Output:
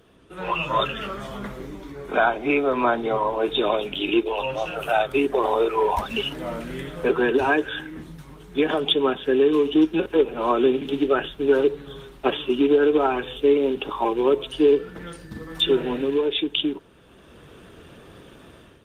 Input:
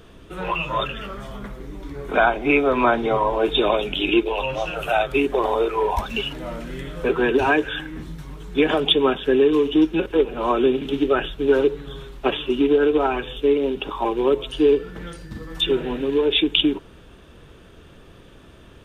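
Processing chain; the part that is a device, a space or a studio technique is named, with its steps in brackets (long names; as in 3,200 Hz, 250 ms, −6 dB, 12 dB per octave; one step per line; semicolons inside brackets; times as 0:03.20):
dynamic equaliser 2,400 Hz, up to −3 dB, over −35 dBFS, Q 3
video call (high-pass filter 130 Hz 6 dB per octave; automatic gain control gain up to 11 dB; level −6.5 dB; Opus 32 kbit/s 48,000 Hz)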